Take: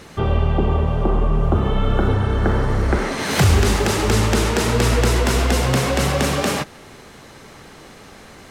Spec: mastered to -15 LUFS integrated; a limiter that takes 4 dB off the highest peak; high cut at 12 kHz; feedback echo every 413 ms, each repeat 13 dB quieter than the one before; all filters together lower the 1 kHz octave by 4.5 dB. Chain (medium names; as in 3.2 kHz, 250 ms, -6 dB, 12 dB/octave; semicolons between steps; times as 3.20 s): low-pass 12 kHz; peaking EQ 1 kHz -6 dB; peak limiter -10 dBFS; feedback delay 413 ms, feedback 22%, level -13 dB; trim +5.5 dB